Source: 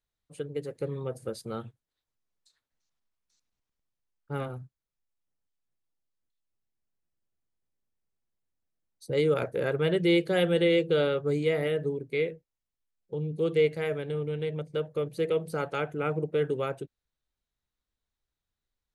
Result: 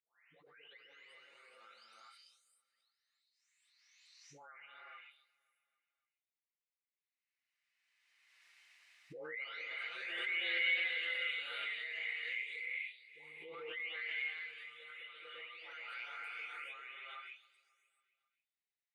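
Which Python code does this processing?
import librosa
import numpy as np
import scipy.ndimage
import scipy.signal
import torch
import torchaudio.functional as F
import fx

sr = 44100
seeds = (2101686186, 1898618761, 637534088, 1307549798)

y = fx.spec_delay(x, sr, highs='late', ms=762)
y = fx.ladder_bandpass(y, sr, hz=2400.0, resonance_pct=55)
y = fx.notch(y, sr, hz=3300.0, q=21.0)
y = fx.echo_feedback(y, sr, ms=270, feedback_pct=57, wet_db=-23.5)
y = fx.rev_gated(y, sr, seeds[0], gate_ms=460, shape='rising', drr_db=-3.0)
y = fx.pre_swell(y, sr, db_per_s=25.0)
y = F.gain(torch.from_numpy(y), 1.0).numpy()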